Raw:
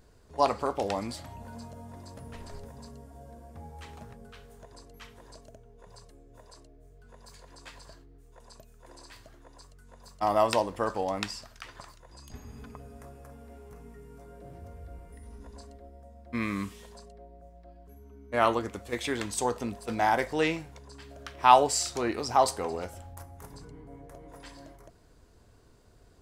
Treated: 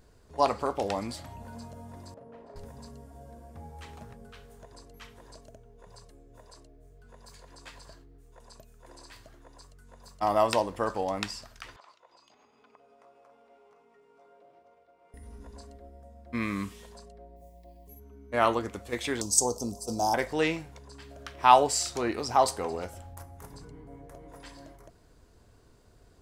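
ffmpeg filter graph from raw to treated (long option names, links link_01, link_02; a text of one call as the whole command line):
ffmpeg -i in.wav -filter_complex "[0:a]asettb=1/sr,asplit=3[link_01][link_02][link_03];[link_01]atrim=end=2.144[link_04];[link_02]atrim=start=2.14:end=2.56,asetpts=PTS-STARTPTS,afade=type=in:duration=0.004:curve=qsin,afade=type=out:start_time=0.416:duration=0.004:curve=qsin,bandpass=frequency=550:width_type=q:width=1.2,asplit=2[link_05][link_06];[link_06]adelay=39,volume=-5.5dB[link_07];[link_05][link_07]amix=inputs=2:normalize=0,atrim=end_sample=18522[link_08];[link_03]atrim=start=2.556[link_09];[link_04][link_08]acrossfade=duration=0.004:curve1=hsin:curve2=qsin[link_10];[link_10][link_09]acrossfade=duration=0.004:curve1=qsin:curve2=hsin,asettb=1/sr,asplit=3[link_11][link_12][link_13];[link_11]atrim=end=11.764[link_14];[link_12]atrim=start=11.76:end=15.14,asetpts=PTS-STARTPTS,afade=type=in:duration=0.004:curve=qsin,afade=type=out:start_time=3.376:duration=0.004:curve=qsin,equalizer=frequency=1700:width_type=o:width=0.34:gain=-10,acompressor=threshold=-46dB:ratio=6:attack=3.2:release=140:knee=1:detection=peak,highpass=580,lowpass=3600[link_15];[link_13]atrim=start=15.136[link_16];[link_14][link_15]acrossfade=duration=0.004:curve1=hsin:curve2=qsin[link_17];[link_17][link_16]acrossfade=duration=0.004:curve1=qsin:curve2=hsin,asettb=1/sr,asplit=3[link_18][link_19][link_20];[link_18]atrim=end=17.364[link_21];[link_19]atrim=start=17.36:end=18,asetpts=PTS-STARTPTS,afade=type=in:duration=0.004:curve=qsin,afade=type=out:start_time=0.636:duration=0.004:curve=qsin,asuperstop=centerf=1400:order=8:qfactor=2,aemphasis=mode=production:type=50fm[link_22];[link_20]atrim=start=17.996[link_23];[link_21][link_22]acrossfade=duration=0.004:curve1=hsin:curve2=qsin[link_24];[link_24][link_23]acrossfade=duration=0.004:curve1=qsin:curve2=hsin,asettb=1/sr,asplit=3[link_25][link_26][link_27];[link_25]atrim=end=19.214[link_28];[link_26]atrim=start=19.21:end=20.14,asetpts=PTS-STARTPTS,afade=type=in:duration=0.004:curve=qsin,afade=type=out:start_time=0.926:duration=0.004:curve=qsin,asuperstop=centerf=1900:order=4:qfactor=0.62,highshelf=frequency=4400:width_type=q:width=3:gain=8[link_29];[link_27]atrim=start=20.136[link_30];[link_28][link_29]acrossfade=duration=0.004:curve1=hsin:curve2=qsin[link_31];[link_31][link_30]acrossfade=duration=0.004:curve1=qsin:curve2=hsin" out.wav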